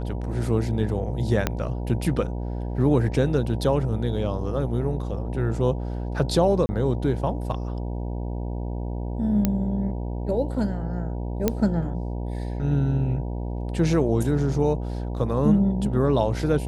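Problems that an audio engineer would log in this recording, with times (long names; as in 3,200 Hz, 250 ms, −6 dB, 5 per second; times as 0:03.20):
mains buzz 60 Hz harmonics 16 −29 dBFS
0:01.47: click −7 dBFS
0:06.66–0:06.69: drop-out 30 ms
0:09.45: click −8 dBFS
0:11.48: click −7 dBFS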